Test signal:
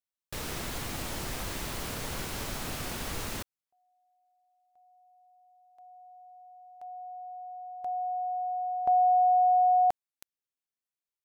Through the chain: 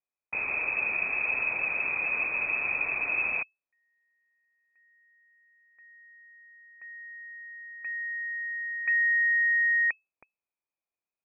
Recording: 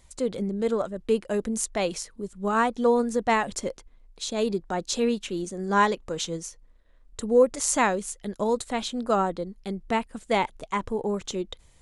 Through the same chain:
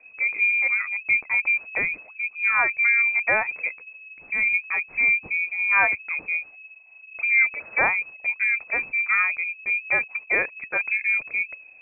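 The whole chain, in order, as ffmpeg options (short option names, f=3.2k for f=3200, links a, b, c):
-af "equalizer=f=125:t=o:w=1:g=6,equalizer=f=500:t=o:w=1:g=-9,equalizer=f=1k:t=o:w=1:g=-10,lowpass=f=2.2k:t=q:w=0.5098,lowpass=f=2.2k:t=q:w=0.6013,lowpass=f=2.2k:t=q:w=0.9,lowpass=f=2.2k:t=q:w=2.563,afreqshift=-2600,volume=7.5dB"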